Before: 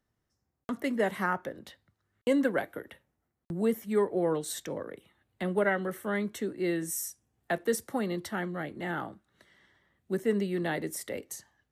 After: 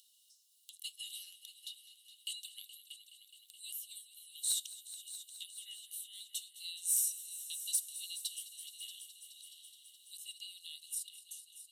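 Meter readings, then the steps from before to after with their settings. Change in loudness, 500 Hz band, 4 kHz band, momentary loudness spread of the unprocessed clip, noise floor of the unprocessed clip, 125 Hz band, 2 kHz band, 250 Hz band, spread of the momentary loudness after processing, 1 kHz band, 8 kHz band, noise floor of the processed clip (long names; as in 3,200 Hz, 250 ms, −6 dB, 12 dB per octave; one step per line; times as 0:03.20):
−8.0 dB, below −40 dB, +4.5 dB, 14 LU, −82 dBFS, below −40 dB, −23.5 dB, below −40 dB, 19 LU, below −40 dB, +4.5 dB, −68 dBFS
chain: fade-out on the ending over 1.56 s
Chebyshev high-pass with heavy ripple 2,800 Hz, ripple 9 dB
soft clipping −30.5 dBFS, distortion −18 dB
upward compression, threshold −59 dBFS
echo machine with several playback heads 211 ms, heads all three, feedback 64%, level −17 dB
level +8 dB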